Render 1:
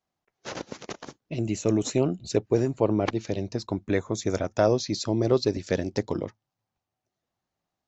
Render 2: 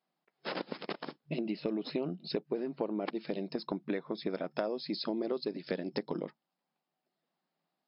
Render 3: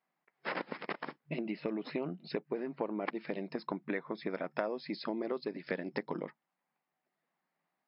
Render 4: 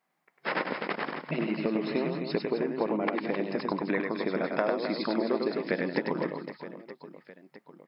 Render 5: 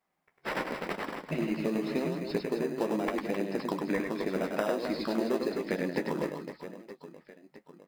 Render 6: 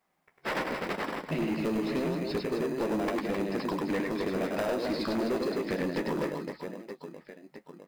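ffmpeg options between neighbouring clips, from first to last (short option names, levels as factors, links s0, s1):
-af "afftfilt=real='re*between(b*sr/4096,150,5300)':imag='im*between(b*sr/4096,150,5300)':win_size=4096:overlap=0.75,acompressor=threshold=0.0282:ratio=6"
-af "equalizer=f=125:t=o:w=1:g=5,equalizer=f=250:t=o:w=1:g=3,equalizer=f=500:t=o:w=1:g=3,equalizer=f=1000:t=o:w=1:g=7,equalizer=f=2000:t=o:w=1:g=12,equalizer=f=4000:t=o:w=1:g=-3,volume=0.447"
-af "aecho=1:1:100|260|516|925.6|1581:0.631|0.398|0.251|0.158|0.1,volume=2"
-filter_complex "[0:a]asplit=2[s0][s1];[s1]acrusher=samples=20:mix=1:aa=0.000001,volume=0.355[s2];[s0][s2]amix=inputs=2:normalize=0,flanger=delay=9.5:depth=4.8:regen=-39:speed=0.88:shape=triangular"
-af "asoftclip=type=tanh:threshold=0.0355,volume=1.68"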